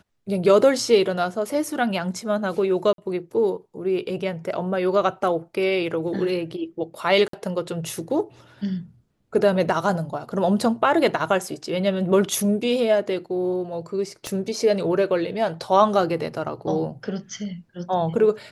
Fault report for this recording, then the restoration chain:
2.93–2.98 gap 52 ms
7.28–7.33 gap 53 ms
14.27 pop -15 dBFS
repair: de-click; interpolate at 2.93, 52 ms; interpolate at 7.28, 53 ms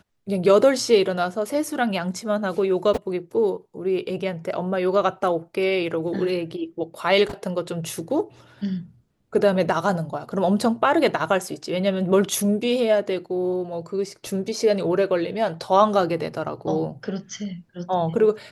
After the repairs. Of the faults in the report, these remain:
14.27 pop

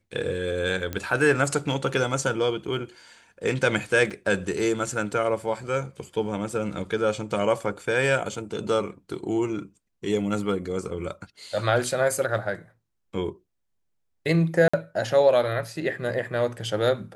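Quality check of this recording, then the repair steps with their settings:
0.93 pop -15 dBFS
4.1–4.11 gap 5.8 ms
14.68–14.73 gap 55 ms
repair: de-click; interpolate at 4.1, 5.8 ms; interpolate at 14.68, 55 ms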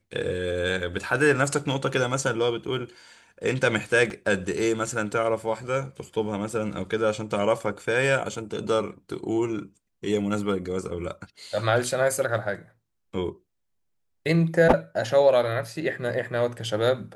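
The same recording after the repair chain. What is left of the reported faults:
none

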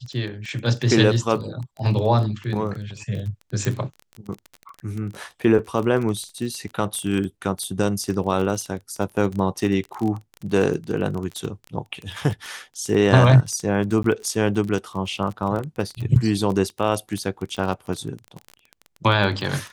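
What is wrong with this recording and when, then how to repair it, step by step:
crackle 23/s -27 dBFS
3.65 pop -11 dBFS
14.03–14.04 gap 13 ms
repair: de-click; interpolate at 14.03, 13 ms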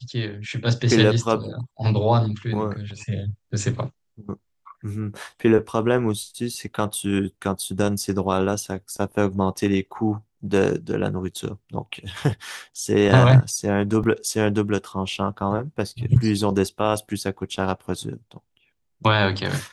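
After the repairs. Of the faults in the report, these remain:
none

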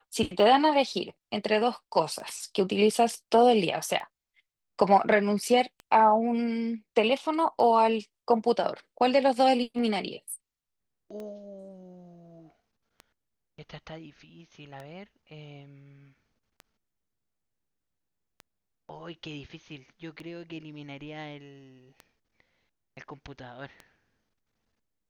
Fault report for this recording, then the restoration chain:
tick 33 1/3 rpm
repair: de-click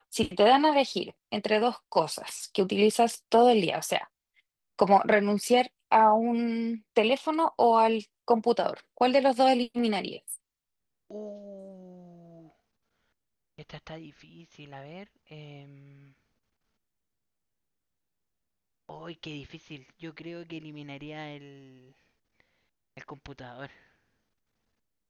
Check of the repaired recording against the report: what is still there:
none

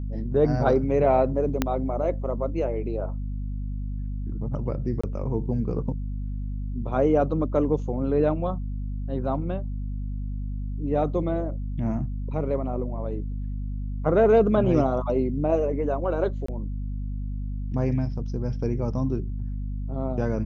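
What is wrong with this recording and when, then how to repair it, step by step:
hum 50 Hz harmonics 5 -30 dBFS
1.62 pop -8 dBFS
5.01–5.04 gap 25 ms
16.46–16.48 gap 24 ms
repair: de-click; de-hum 50 Hz, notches 5; interpolate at 5.01, 25 ms; interpolate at 16.46, 24 ms

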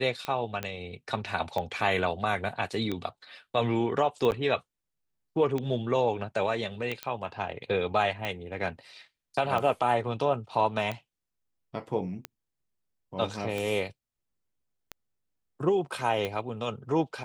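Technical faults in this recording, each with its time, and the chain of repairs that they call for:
tick 45 rpm -18 dBFS
0.63 pop -17 dBFS
4.31–4.32 gap 9.3 ms
7.03 pop -17 dBFS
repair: de-click; interpolate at 4.31, 9.3 ms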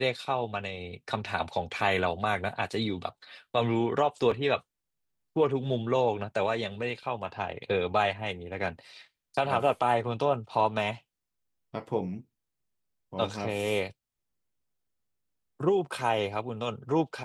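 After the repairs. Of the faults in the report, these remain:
0.63 pop

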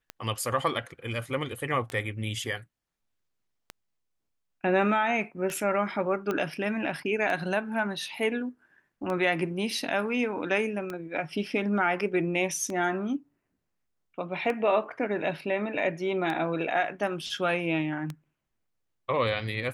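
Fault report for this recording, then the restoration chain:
tick 33 1/3 rpm -20 dBFS
6.31 pop -17 dBFS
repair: de-click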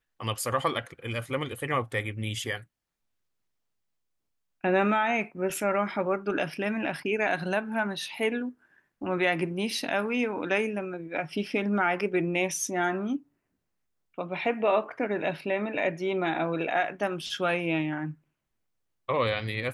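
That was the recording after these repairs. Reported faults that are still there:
6.31 pop

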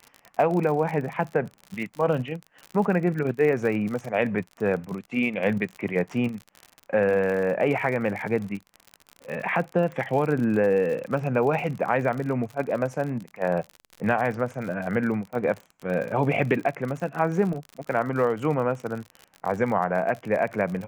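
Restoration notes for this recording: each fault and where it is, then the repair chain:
crackle 52/s -31 dBFS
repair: de-click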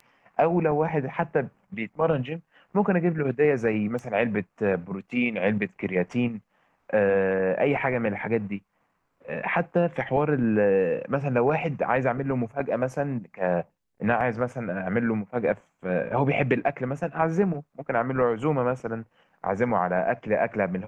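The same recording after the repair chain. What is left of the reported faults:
none

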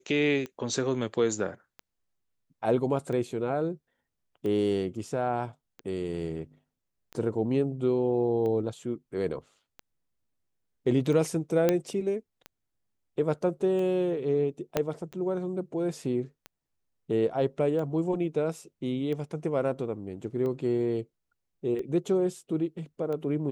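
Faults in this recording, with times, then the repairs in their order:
tick 45 rpm -25 dBFS
11.69 pop -10 dBFS
14.77 pop -11 dBFS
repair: de-click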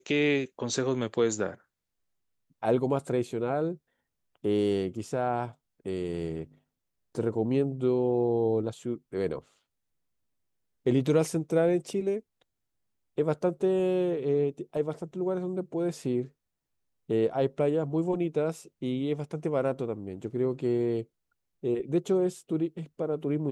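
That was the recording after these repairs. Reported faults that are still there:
14.77 pop

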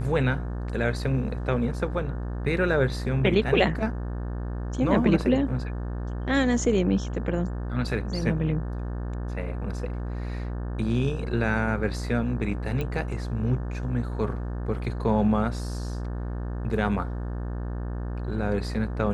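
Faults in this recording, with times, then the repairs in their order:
buzz 60 Hz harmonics 30 -31 dBFS
12.81 pop -18 dBFS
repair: de-click; de-hum 60 Hz, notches 30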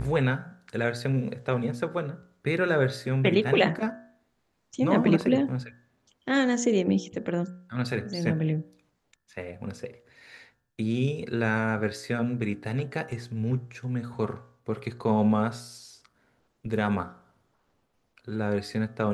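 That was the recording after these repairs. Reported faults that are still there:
none

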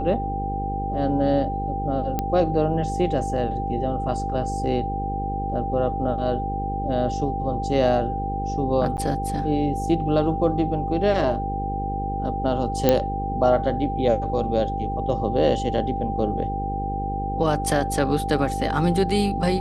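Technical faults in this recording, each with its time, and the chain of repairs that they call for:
buzz 50 Hz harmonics 10 -29 dBFS
tone 790 Hz -27 dBFS
2.19 pop -11 dBFS
8.97–8.98 gap 9.9 ms
12.89 pop -4 dBFS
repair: de-click; de-hum 50 Hz, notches 10; notch 790 Hz, Q 30; interpolate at 8.97, 9.9 ms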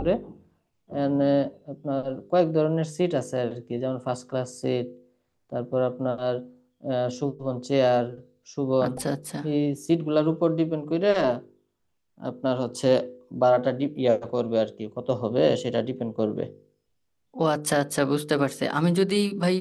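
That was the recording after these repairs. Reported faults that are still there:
none

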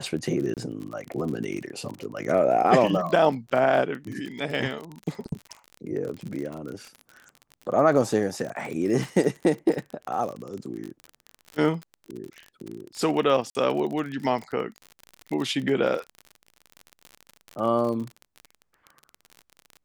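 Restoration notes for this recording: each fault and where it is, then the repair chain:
crackle 41/s -31 dBFS
0.54–0.57 gap 28 ms
13.5–13.55 gap 50 ms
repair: de-click; interpolate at 0.54, 28 ms; interpolate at 13.5, 50 ms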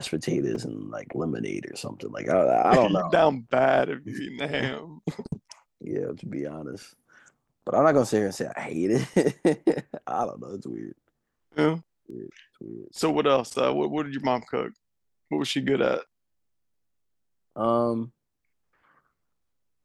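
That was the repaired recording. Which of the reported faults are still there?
none

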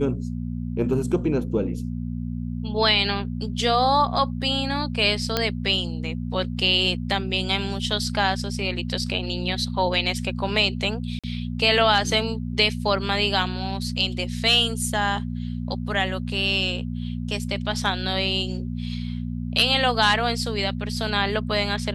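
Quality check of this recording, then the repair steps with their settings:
hum 60 Hz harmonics 4 -29 dBFS
5.37 pop -6 dBFS
11.19–11.24 gap 46 ms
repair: de-click; de-hum 60 Hz, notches 4; interpolate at 11.19, 46 ms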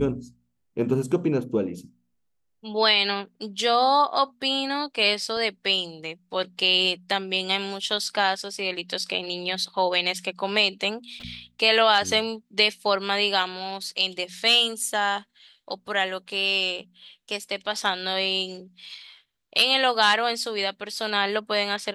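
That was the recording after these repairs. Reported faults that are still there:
none

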